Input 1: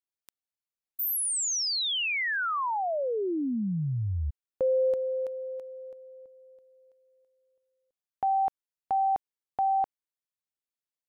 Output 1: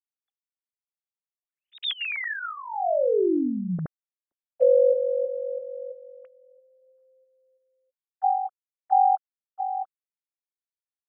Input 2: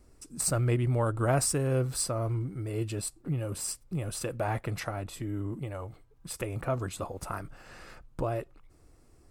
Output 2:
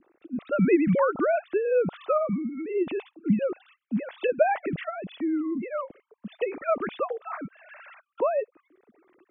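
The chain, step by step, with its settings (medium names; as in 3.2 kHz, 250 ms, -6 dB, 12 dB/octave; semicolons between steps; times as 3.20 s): formants replaced by sine waves; rotary cabinet horn 0.85 Hz; trim +6.5 dB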